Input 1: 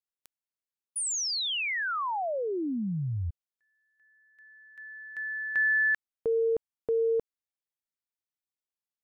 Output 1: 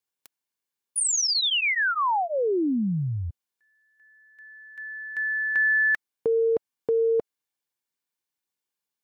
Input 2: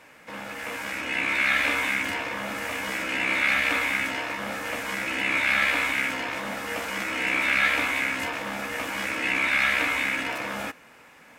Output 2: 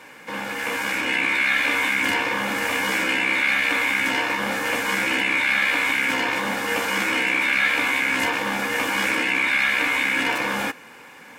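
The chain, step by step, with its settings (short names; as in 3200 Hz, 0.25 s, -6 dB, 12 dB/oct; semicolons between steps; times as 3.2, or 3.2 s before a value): low shelf 88 Hz -10 dB; in parallel at -2 dB: negative-ratio compressor -29 dBFS, ratio -0.5; on the sum: notch comb 650 Hz; gain +2 dB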